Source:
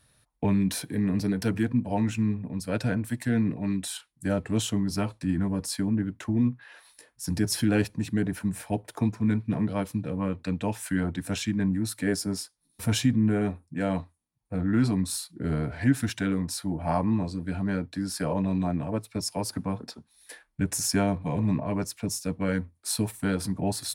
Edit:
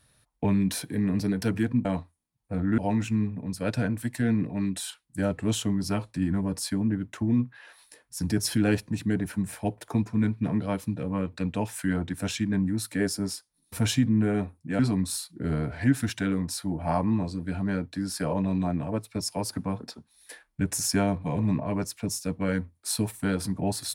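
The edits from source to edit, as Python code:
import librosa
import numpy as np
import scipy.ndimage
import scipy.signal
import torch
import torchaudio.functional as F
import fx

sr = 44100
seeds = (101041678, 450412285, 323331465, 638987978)

y = fx.edit(x, sr, fx.move(start_s=13.86, length_s=0.93, to_s=1.85), tone=tone)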